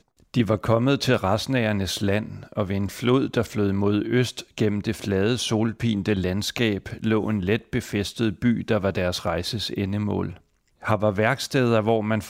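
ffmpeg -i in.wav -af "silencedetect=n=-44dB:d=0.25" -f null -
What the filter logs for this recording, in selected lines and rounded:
silence_start: 10.38
silence_end: 10.82 | silence_duration: 0.44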